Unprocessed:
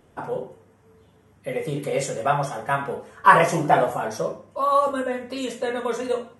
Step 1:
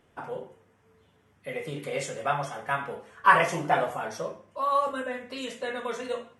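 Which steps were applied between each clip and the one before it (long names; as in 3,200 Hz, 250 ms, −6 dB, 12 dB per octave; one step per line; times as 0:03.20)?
parametric band 2,400 Hz +7 dB 2.3 octaves
level −8.5 dB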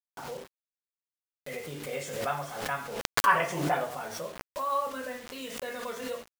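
bit reduction 7 bits
background raised ahead of every attack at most 52 dB per second
level −5 dB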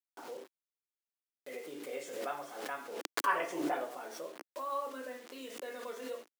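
four-pole ladder high-pass 270 Hz, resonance 50%
level +1 dB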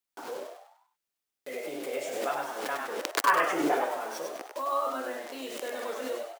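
echo with shifted repeats 99 ms, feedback 42%, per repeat +100 Hz, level −5 dB
level +6.5 dB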